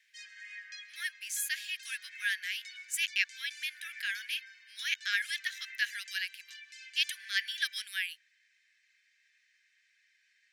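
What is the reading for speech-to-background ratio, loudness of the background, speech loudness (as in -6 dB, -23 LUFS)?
13.0 dB, -47.5 LUFS, -34.5 LUFS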